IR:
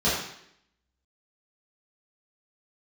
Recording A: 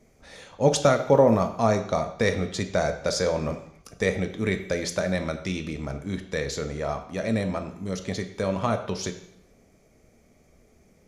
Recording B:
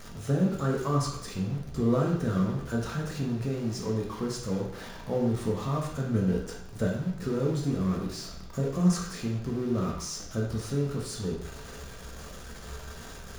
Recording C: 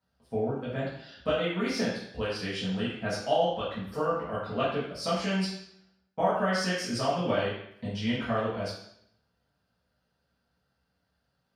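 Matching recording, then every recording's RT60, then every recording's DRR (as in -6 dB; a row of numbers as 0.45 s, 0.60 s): C; 0.70 s, 0.70 s, 0.70 s; 6.5 dB, -2.0 dB, -11.0 dB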